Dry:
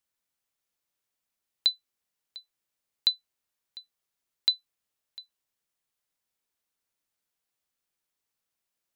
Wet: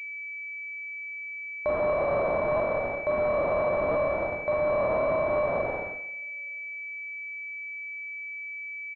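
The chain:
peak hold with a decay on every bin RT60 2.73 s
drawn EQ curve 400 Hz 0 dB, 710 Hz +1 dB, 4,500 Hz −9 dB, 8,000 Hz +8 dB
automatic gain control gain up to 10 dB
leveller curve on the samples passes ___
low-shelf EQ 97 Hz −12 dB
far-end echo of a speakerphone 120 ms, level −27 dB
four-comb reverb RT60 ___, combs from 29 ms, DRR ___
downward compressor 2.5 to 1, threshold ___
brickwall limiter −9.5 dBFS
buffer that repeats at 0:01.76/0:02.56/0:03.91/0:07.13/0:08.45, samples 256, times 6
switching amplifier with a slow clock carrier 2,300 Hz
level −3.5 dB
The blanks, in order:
5, 0.65 s, −4 dB, −18 dBFS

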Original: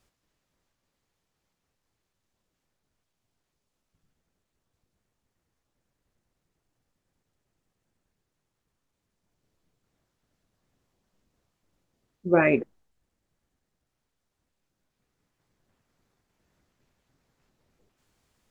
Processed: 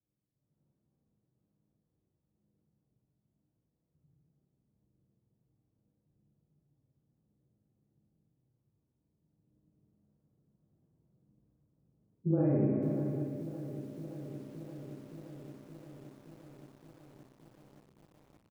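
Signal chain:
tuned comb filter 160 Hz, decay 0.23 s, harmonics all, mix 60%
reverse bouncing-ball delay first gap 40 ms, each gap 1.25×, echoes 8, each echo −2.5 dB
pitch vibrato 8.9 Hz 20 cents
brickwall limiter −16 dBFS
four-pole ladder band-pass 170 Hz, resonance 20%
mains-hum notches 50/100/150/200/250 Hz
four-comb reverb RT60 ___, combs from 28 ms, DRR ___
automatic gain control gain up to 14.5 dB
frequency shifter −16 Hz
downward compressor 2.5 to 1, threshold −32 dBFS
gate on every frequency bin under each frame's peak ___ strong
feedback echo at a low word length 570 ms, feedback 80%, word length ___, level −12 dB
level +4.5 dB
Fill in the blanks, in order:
0.73 s, 0.5 dB, −55 dB, 10 bits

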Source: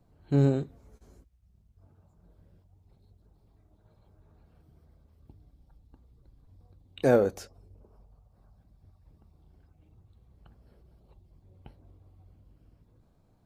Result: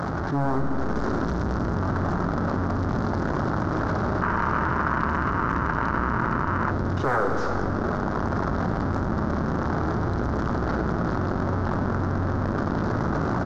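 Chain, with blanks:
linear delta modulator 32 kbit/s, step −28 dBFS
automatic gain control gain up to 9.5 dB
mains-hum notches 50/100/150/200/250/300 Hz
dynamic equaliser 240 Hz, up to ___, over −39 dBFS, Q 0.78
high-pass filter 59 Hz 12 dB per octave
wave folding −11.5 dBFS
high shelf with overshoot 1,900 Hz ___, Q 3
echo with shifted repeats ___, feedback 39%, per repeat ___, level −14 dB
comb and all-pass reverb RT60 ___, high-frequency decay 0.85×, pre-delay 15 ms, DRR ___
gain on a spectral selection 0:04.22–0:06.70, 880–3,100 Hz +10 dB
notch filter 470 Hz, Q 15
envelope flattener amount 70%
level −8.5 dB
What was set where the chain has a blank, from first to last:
+6 dB, −10.5 dB, 102 ms, −66 Hz, 1.7 s, 8.5 dB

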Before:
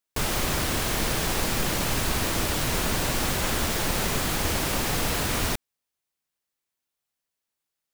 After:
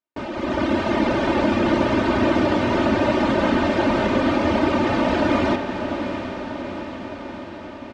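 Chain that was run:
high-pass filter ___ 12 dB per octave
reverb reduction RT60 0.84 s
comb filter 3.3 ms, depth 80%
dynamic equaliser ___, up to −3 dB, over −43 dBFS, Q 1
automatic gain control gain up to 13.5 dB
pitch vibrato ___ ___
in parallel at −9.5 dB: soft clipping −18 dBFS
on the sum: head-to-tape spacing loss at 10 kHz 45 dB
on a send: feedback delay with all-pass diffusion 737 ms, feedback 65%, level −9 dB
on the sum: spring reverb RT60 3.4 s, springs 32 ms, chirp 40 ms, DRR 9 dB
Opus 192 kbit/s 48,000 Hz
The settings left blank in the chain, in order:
160 Hz, 1,600 Hz, 6.4 Hz, 27 cents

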